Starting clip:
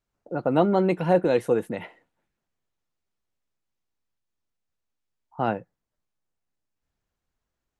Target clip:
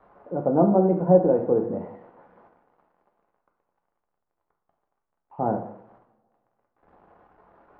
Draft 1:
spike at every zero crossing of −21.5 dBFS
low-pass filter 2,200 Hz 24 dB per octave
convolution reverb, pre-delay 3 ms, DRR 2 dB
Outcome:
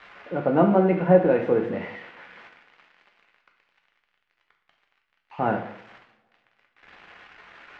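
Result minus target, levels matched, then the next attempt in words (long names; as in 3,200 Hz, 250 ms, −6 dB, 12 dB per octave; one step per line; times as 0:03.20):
2,000 Hz band +17.5 dB
spike at every zero crossing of −21.5 dBFS
low-pass filter 940 Hz 24 dB per octave
convolution reverb, pre-delay 3 ms, DRR 2 dB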